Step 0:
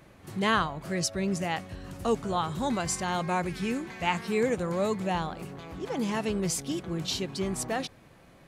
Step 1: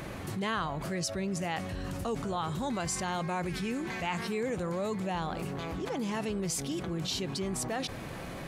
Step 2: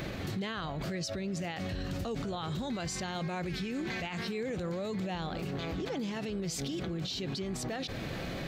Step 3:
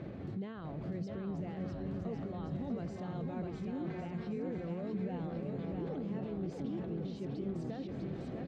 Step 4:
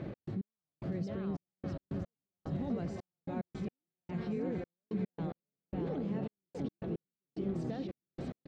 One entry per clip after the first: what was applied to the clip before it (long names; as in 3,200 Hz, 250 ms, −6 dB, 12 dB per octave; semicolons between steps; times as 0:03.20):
envelope flattener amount 70%; level −8.5 dB
graphic EQ with 15 bands 1,000 Hz −7 dB, 4,000 Hz +5 dB, 10,000 Hz −12 dB; brickwall limiter −31.5 dBFS, peak gain reduction 11 dB; level +3.5 dB
resonant band-pass 220 Hz, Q 0.53; bouncing-ball delay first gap 650 ms, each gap 0.7×, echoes 5; level −3.5 dB
gate pattern "x.x...xxxx.." 110 BPM −60 dB; level +2.5 dB